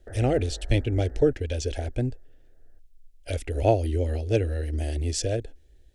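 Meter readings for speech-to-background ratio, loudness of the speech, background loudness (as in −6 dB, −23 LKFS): 15.5 dB, −27.0 LKFS, −42.5 LKFS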